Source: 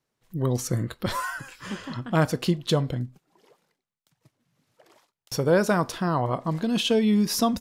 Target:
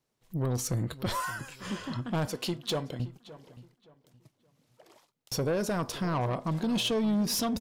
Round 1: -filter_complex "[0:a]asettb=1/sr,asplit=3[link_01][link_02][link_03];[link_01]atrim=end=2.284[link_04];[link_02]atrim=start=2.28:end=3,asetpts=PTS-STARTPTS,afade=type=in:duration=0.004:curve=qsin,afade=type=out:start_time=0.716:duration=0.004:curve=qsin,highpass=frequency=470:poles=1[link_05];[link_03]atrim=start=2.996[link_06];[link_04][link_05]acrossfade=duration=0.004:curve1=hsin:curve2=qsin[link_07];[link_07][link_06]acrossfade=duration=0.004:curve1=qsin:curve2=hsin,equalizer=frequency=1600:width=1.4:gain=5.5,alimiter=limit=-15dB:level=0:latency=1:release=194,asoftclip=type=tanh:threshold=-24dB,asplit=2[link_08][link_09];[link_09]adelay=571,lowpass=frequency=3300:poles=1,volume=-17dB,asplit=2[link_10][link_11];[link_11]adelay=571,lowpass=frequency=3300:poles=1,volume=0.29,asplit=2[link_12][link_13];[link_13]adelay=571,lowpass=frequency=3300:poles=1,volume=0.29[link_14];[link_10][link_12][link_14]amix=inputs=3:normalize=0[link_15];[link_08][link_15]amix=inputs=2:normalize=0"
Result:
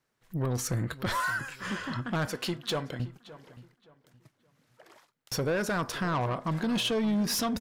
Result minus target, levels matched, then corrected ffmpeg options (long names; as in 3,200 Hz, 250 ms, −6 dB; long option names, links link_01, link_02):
2,000 Hz band +6.0 dB
-filter_complex "[0:a]asettb=1/sr,asplit=3[link_01][link_02][link_03];[link_01]atrim=end=2.284[link_04];[link_02]atrim=start=2.28:end=3,asetpts=PTS-STARTPTS,afade=type=in:duration=0.004:curve=qsin,afade=type=out:start_time=0.716:duration=0.004:curve=qsin,highpass=frequency=470:poles=1[link_05];[link_03]atrim=start=2.996[link_06];[link_04][link_05]acrossfade=duration=0.004:curve1=hsin:curve2=qsin[link_07];[link_07][link_06]acrossfade=duration=0.004:curve1=qsin:curve2=hsin,equalizer=frequency=1600:width=1.4:gain=-4,alimiter=limit=-15dB:level=0:latency=1:release=194,asoftclip=type=tanh:threshold=-24dB,asplit=2[link_08][link_09];[link_09]adelay=571,lowpass=frequency=3300:poles=1,volume=-17dB,asplit=2[link_10][link_11];[link_11]adelay=571,lowpass=frequency=3300:poles=1,volume=0.29,asplit=2[link_12][link_13];[link_13]adelay=571,lowpass=frequency=3300:poles=1,volume=0.29[link_14];[link_10][link_12][link_14]amix=inputs=3:normalize=0[link_15];[link_08][link_15]amix=inputs=2:normalize=0"